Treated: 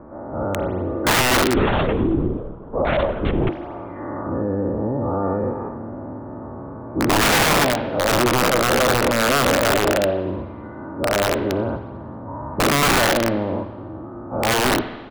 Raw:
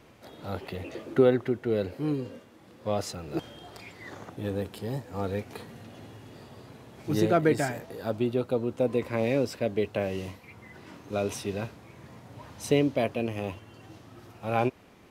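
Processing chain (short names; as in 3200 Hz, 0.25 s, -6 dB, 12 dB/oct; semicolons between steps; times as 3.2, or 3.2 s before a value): spectral dilation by 0.24 s; steep low-pass 1300 Hz 36 dB/oct; comb 3.4 ms, depth 41%; in parallel at +1.5 dB: compressor 12:1, threshold -32 dBFS, peak gain reduction 21.5 dB; on the sum: wrapped overs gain 13.5 dB; reverb RT60 1.2 s, pre-delay 43 ms, DRR 10.5 dB; 1.55–3.49 LPC vocoder at 8 kHz whisper; gain +2 dB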